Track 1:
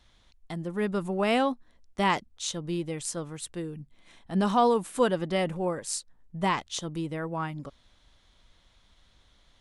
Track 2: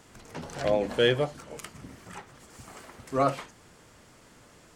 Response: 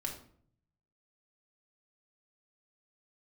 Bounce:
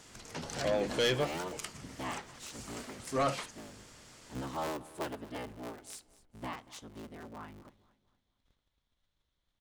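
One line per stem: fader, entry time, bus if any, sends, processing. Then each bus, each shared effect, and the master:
-16.0 dB, 0.00 s, send -14.5 dB, echo send -18 dB, cycle switcher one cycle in 3, inverted; gate -58 dBFS, range -7 dB
-3.0 dB, 0.00 s, no send, no echo send, bell 5300 Hz +8 dB 2.2 oct; soft clip -20.5 dBFS, distortion -10 dB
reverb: on, RT60 0.55 s, pre-delay 3 ms
echo: feedback echo 0.233 s, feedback 38%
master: dry

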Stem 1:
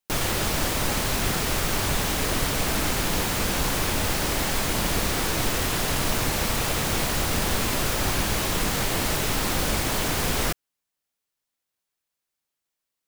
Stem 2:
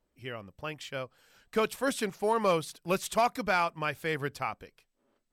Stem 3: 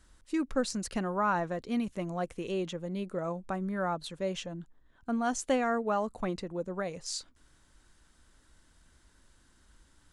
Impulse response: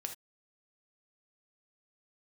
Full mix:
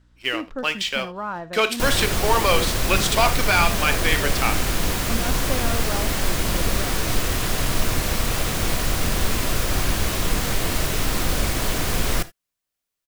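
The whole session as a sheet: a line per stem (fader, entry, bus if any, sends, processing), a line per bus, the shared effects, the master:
-3.0 dB, 1.70 s, send -4.5 dB, low shelf 64 Hz +8.5 dB; notch 860 Hz, Q 12
-1.0 dB, 0.00 s, send -3.5 dB, HPF 280 Hz; bell 3500 Hz +12 dB 2.3 oct; sample leveller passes 2; auto duck -10 dB, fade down 1.90 s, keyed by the third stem
-4.0 dB, 0.00 s, send -7 dB, LPF 4800 Hz; hum 60 Hz, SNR 22 dB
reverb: on, pre-delay 3 ms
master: dry

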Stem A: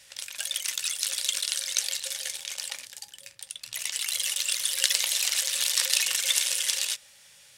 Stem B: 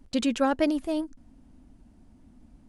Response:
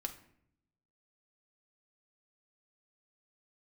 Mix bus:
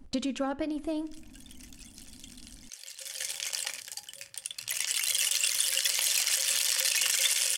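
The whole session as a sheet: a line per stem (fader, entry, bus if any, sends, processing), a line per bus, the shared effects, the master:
+1.5 dB, 0.95 s, no send, notch 3800 Hz, Q 8.6; auto duck -23 dB, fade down 1.30 s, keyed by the second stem
-2.0 dB, 0.00 s, send -4 dB, compressor 12:1, threshold -30 dBFS, peak gain reduction 12.5 dB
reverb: on, RT60 0.70 s, pre-delay 4 ms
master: limiter -12.5 dBFS, peak gain reduction 9.5 dB

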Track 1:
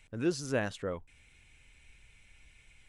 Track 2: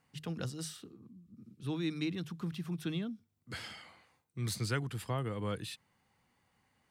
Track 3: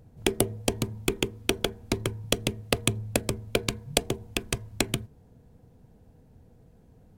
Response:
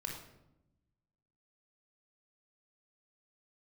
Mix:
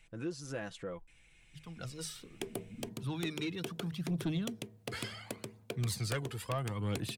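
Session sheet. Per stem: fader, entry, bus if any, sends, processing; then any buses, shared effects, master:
-3.5 dB, 0.00 s, no send, comb 6 ms, depth 54%; compressor 2:1, threshold -36 dBFS, peak gain reduction 8.5 dB
-12.0 dB, 1.40 s, no send, AGC gain up to 12 dB; phaser 0.71 Hz, delay 2.4 ms, feedback 56%
-13.5 dB, 2.15 s, no send, HPF 120 Hz 24 dB/oct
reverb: off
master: soft clip -27 dBFS, distortion -16 dB

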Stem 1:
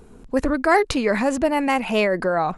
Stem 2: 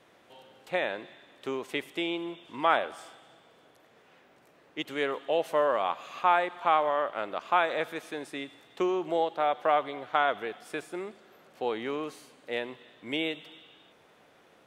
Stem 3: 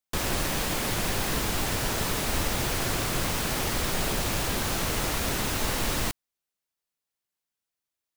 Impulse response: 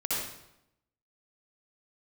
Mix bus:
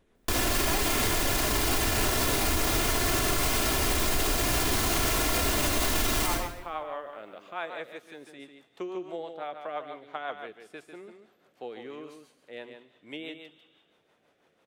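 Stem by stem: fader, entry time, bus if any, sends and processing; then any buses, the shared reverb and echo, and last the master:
-13.5 dB, 0.00 s, no send, no echo send, upward expander 1.5:1, over -31 dBFS
-7.0 dB, 0.00 s, no send, echo send -7.5 dB, rotary speaker horn 6 Hz; auto duck -10 dB, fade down 0.30 s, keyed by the first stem
+1.5 dB, 0.15 s, send -8.5 dB, no echo send, comb 2.9 ms, depth 54%; modulation noise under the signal 10 dB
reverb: on, RT60 0.80 s, pre-delay 56 ms
echo: echo 0.147 s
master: limiter -16.5 dBFS, peak gain reduction 9 dB

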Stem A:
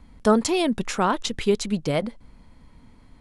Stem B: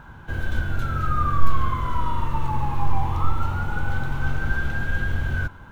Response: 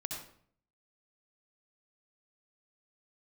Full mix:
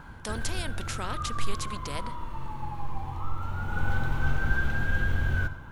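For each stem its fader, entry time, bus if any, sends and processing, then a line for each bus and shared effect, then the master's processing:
-12.0 dB, 0.00 s, send -20.5 dB, spectral compressor 2:1
-4.0 dB, 0.00 s, send -9.5 dB, auto duck -19 dB, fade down 1.10 s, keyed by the first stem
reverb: on, RT60 0.55 s, pre-delay 59 ms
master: dry

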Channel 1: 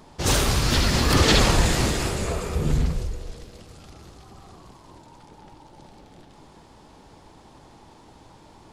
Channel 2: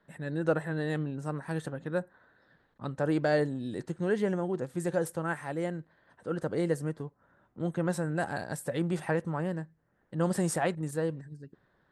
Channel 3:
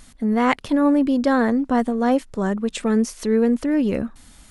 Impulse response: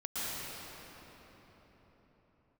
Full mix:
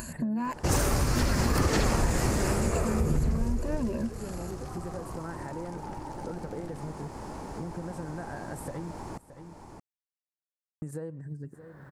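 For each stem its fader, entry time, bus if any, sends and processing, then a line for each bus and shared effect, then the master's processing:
+3.0 dB, 0.45 s, no bus, no send, echo send -21 dB, dry
0.0 dB, 0.00 s, muted 8.91–10.82, bus A, no send, echo send -22 dB, harmonic-percussive split percussive -6 dB; compressor, threshold -40 dBFS, peak gain reduction 16.5 dB
-3.0 dB, 0.00 s, bus A, no send, no echo send, soft clip -20 dBFS, distortion -10 dB; ripple EQ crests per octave 1.4, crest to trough 17 dB
bus A: 0.0 dB, HPF 53 Hz; compressor 6:1, threshold -28 dBFS, peak gain reduction 11 dB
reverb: off
echo: echo 0.621 s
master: upward compressor, threshold -29 dBFS; bell 3500 Hz -13 dB 0.91 oct; compressor 4:1, threshold -23 dBFS, peak gain reduction 11 dB

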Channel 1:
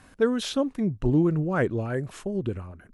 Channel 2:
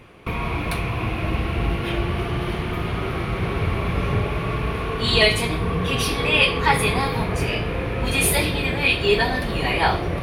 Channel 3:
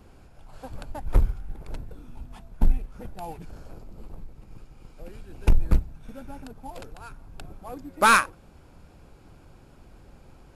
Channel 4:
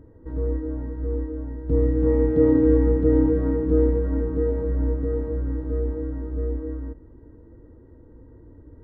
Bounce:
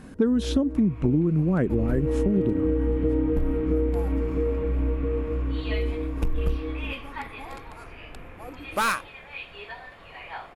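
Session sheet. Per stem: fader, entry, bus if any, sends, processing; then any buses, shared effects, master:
+1.0 dB, 0.00 s, no send, bell 210 Hz +14.5 dB 2 oct
-16.0 dB, 0.50 s, no send, three-band isolator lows -23 dB, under 560 Hz, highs -23 dB, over 3300 Hz
-12.0 dB, 0.75 s, no send, sine folder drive 5 dB, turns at -6 dBFS
-1.0 dB, 0.00 s, no send, dry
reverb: off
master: compressor 8:1, threshold -19 dBFS, peak gain reduction 14.5 dB

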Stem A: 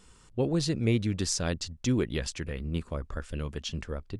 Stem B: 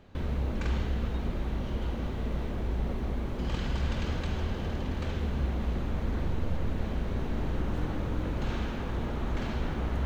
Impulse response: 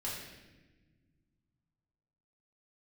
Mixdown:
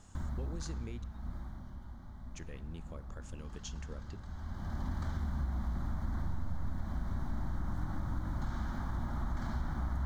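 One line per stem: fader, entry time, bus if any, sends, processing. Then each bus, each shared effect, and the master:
-9.5 dB, 0.00 s, muted 1.04–2.34, send -16.5 dB, bell 6600 Hz +12.5 dB 0.32 oct; compressor 5:1, threshold -34 dBFS, peak gain reduction 13.5 dB
-0.5 dB, 0.00 s, send -23.5 dB, fixed phaser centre 1100 Hz, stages 4; auto duck -17 dB, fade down 1.00 s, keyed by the first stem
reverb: on, pre-delay 4 ms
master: compressor 3:1, threshold -32 dBFS, peak gain reduction 7 dB

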